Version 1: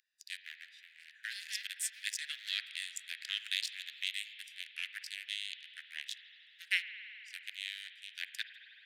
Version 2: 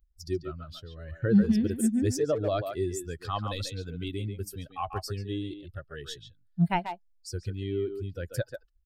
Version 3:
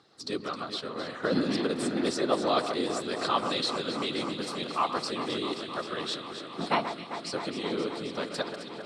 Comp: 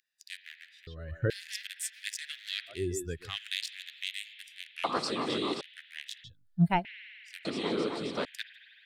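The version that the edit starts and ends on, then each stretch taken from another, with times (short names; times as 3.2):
1
0.87–1.3 from 2
2.79–3.25 from 2, crossfade 0.24 s
4.84–5.61 from 3
6.24–6.85 from 2
7.45–8.25 from 3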